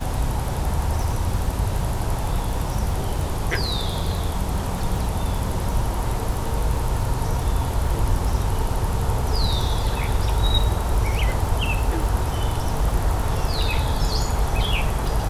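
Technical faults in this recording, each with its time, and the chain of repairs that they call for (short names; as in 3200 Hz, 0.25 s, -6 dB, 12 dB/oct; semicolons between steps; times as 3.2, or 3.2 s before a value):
crackle 40/s -29 dBFS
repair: de-click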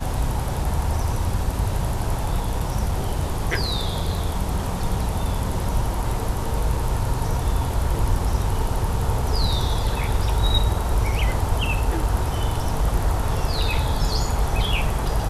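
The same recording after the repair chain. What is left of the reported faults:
none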